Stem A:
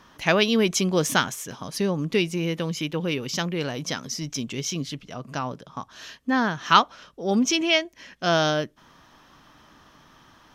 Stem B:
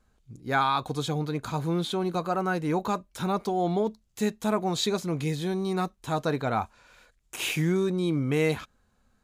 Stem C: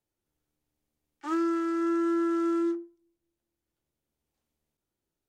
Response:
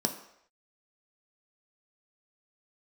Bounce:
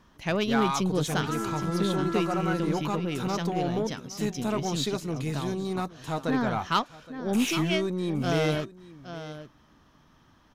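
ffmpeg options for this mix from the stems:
-filter_complex "[0:a]lowshelf=frequency=380:gain=9,volume=-10dB,asplit=2[link_01][link_02];[link_02]volume=-12dB[link_03];[1:a]aeval=exprs='0.251*(cos(1*acos(clip(val(0)/0.251,-1,1)))-cos(1*PI/2))+0.0141*(cos(5*acos(clip(val(0)/0.251,-1,1)))-cos(5*PI/2))':channel_layout=same,volume=-4.5dB,asplit=2[link_04][link_05];[link_05]volume=-19dB[link_06];[2:a]highpass=500,volume=-1dB,asplit=2[link_07][link_08];[link_08]volume=-13.5dB[link_09];[link_03][link_06][link_09]amix=inputs=3:normalize=0,aecho=0:1:818:1[link_10];[link_01][link_04][link_07][link_10]amix=inputs=4:normalize=0,aeval=exprs='0.266*(cos(1*acos(clip(val(0)/0.266,-1,1)))-cos(1*PI/2))+0.0335*(cos(2*acos(clip(val(0)/0.266,-1,1)))-cos(2*PI/2))+0.00944*(cos(8*acos(clip(val(0)/0.266,-1,1)))-cos(8*PI/2))':channel_layout=same"

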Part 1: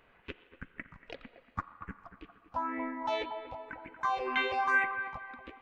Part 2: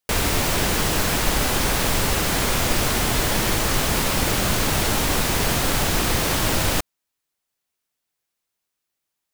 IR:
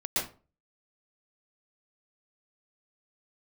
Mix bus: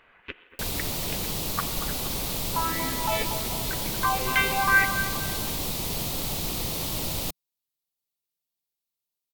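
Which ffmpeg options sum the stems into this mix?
-filter_complex "[0:a]equalizer=frequency=2000:width=0.42:gain=8.5,volume=-0.5dB[link_01];[1:a]equalizer=frequency=160:width_type=o:width=0.67:gain=4,equalizer=frequency=1600:width_type=o:width=0.67:gain=-11,equalizer=frequency=4000:width_type=o:width=0.67:gain=5,equalizer=frequency=16000:width_type=o:width=0.67:gain=10,adelay=500,volume=-11dB[link_02];[link_01][link_02]amix=inputs=2:normalize=0"

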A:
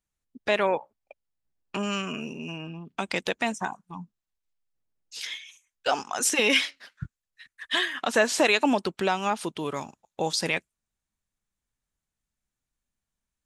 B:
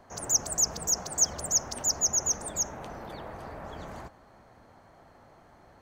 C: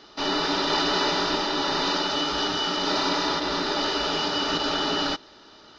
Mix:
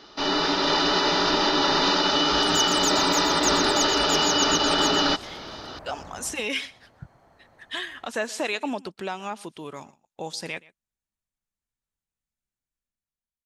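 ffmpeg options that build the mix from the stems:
ffmpeg -i stem1.wav -i stem2.wav -i stem3.wav -filter_complex "[0:a]volume=-17dB,asplit=2[link_01][link_02];[link_02]volume=-11dB[link_03];[1:a]adelay=2250,volume=-3.5dB,asplit=2[link_04][link_05];[link_05]volume=-6.5dB[link_06];[2:a]volume=1dB[link_07];[link_01][link_07]amix=inputs=2:normalize=0,dynaudnorm=framelen=280:gausssize=7:maxgain=10.5dB,alimiter=limit=-12dB:level=0:latency=1:release=182,volume=0dB[link_08];[link_03][link_06]amix=inputs=2:normalize=0,aecho=0:1:125:1[link_09];[link_04][link_08][link_09]amix=inputs=3:normalize=0" out.wav

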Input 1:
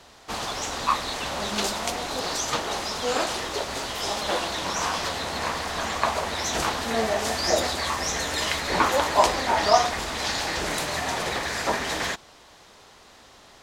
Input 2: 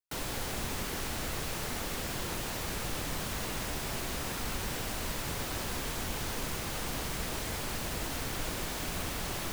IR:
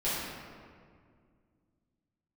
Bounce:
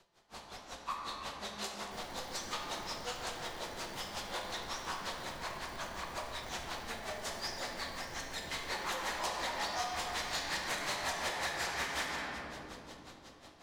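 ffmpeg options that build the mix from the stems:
-filter_complex "[0:a]dynaudnorm=framelen=130:gausssize=13:maxgain=7.5dB,aeval=exprs='val(0)*pow(10,-27*(0.5-0.5*cos(2*PI*5.5*n/s))/20)':channel_layout=same,volume=-5dB,afade=type=in:start_time=8.44:duration=0.6:silence=0.251189,asplit=2[link_01][link_02];[link_02]volume=-7.5dB[link_03];[1:a]acrusher=samples=34:mix=1:aa=0.000001,adelay=1800,volume=-12dB,asplit=2[link_04][link_05];[link_05]volume=-9dB[link_06];[2:a]atrim=start_sample=2205[link_07];[link_03][link_06]amix=inputs=2:normalize=0[link_08];[link_08][link_07]afir=irnorm=-1:irlink=0[link_09];[link_01][link_04][link_09]amix=inputs=3:normalize=0,acrossover=split=700|7600[link_10][link_11][link_12];[link_10]acompressor=threshold=-47dB:ratio=4[link_13];[link_11]acompressor=threshold=-33dB:ratio=4[link_14];[link_12]acompressor=threshold=-48dB:ratio=4[link_15];[link_13][link_14][link_15]amix=inputs=3:normalize=0,asoftclip=type=tanh:threshold=-28.5dB"

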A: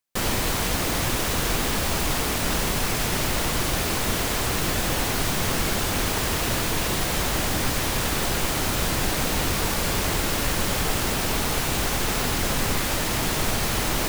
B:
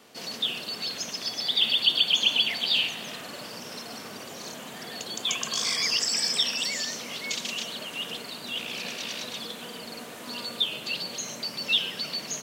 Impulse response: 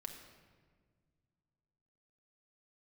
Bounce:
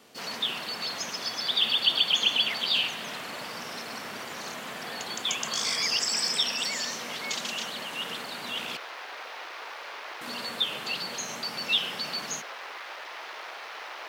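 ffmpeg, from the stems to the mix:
-filter_complex "[0:a]highpass=760,afwtdn=0.0251,acrossover=split=3100[link_01][link_02];[link_02]acompressor=threshold=-42dB:ratio=4:attack=1:release=60[link_03];[link_01][link_03]amix=inputs=2:normalize=0,volume=-8.5dB[link_04];[1:a]volume=-1.5dB,asplit=3[link_05][link_06][link_07];[link_05]atrim=end=8.77,asetpts=PTS-STARTPTS,afade=type=out:start_time=8.766:duration=0.004:curve=hsin[link_08];[link_06]atrim=start=8.77:end=10.21,asetpts=PTS-STARTPTS,volume=0[link_09];[link_07]atrim=start=10.21,asetpts=PTS-STARTPTS,afade=type=in:duration=0.004:curve=hsin[link_10];[link_08][link_09][link_10]concat=n=3:v=0:a=1[link_11];[link_04][link_11]amix=inputs=2:normalize=0"

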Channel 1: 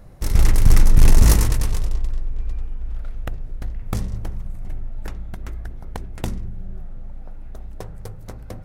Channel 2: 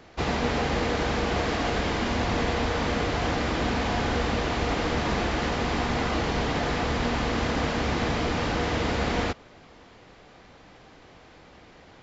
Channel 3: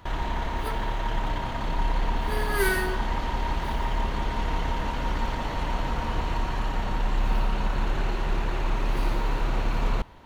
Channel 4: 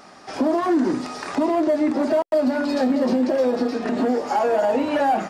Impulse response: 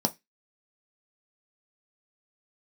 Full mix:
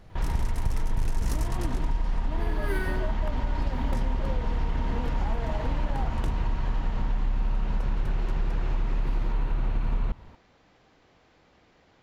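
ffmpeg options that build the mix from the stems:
-filter_complex "[0:a]highshelf=frequency=11000:gain=-9,volume=-7.5dB[link_01];[1:a]acompressor=threshold=-31dB:ratio=6,volume=-10dB[link_02];[2:a]bass=frequency=250:gain=9,treble=frequency=4000:gain=-8,adelay=100,volume=-4.5dB[link_03];[3:a]adelay=900,volume=-16.5dB[link_04];[link_01][link_02][link_03][link_04]amix=inputs=4:normalize=0,acompressor=threshold=-22dB:ratio=5"

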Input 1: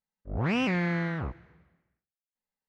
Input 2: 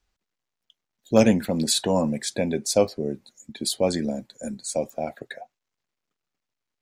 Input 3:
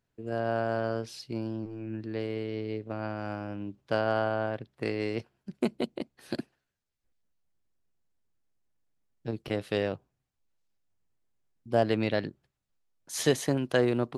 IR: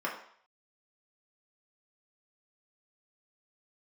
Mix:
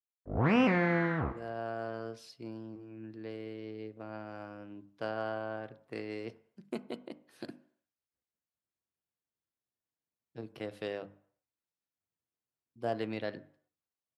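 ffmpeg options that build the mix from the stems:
-filter_complex "[0:a]agate=range=-30dB:threshold=-56dB:ratio=16:detection=peak,highshelf=frequency=2900:gain=-11,volume=1dB,asplit=2[link_01][link_02];[link_02]volume=-12.5dB[link_03];[2:a]bandreject=frequency=50:width_type=h:width=6,bandreject=frequency=100:width_type=h:width=6,bandreject=frequency=150:width_type=h:width=6,bandreject=frequency=200:width_type=h:width=6,bandreject=frequency=250:width_type=h:width=6,bandreject=frequency=300:width_type=h:width=6,adelay=1100,volume=-10dB,asplit=2[link_04][link_05];[link_05]volume=-16.5dB[link_06];[3:a]atrim=start_sample=2205[link_07];[link_03][link_06]amix=inputs=2:normalize=0[link_08];[link_08][link_07]afir=irnorm=-1:irlink=0[link_09];[link_01][link_04][link_09]amix=inputs=3:normalize=0,highpass=80"

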